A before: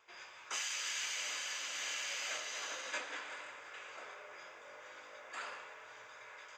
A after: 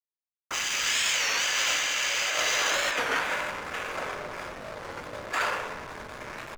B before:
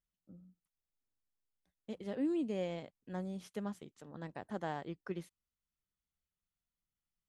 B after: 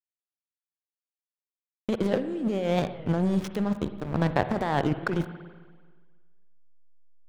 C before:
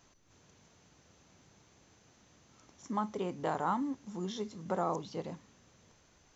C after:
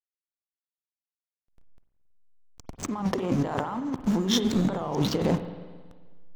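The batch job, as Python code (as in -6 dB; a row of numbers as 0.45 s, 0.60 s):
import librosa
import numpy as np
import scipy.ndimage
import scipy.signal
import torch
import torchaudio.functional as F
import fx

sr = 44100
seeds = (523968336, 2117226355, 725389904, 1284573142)

y = fx.fade_in_head(x, sr, length_s=1.47)
y = fx.backlash(y, sr, play_db=-46.0)
y = fx.over_compress(y, sr, threshold_db=-44.0, ratio=-1.0)
y = fx.rev_spring(y, sr, rt60_s=1.5, pass_ms=(46, 54), chirp_ms=40, drr_db=10.0)
y = fx.record_warp(y, sr, rpm=33.33, depth_cents=160.0)
y = y * 10.0 ** (-30 / 20.0) / np.sqrt(np.mean(np.square(y)))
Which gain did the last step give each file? +17.5 dB, +18.0 dB, +16.5 dB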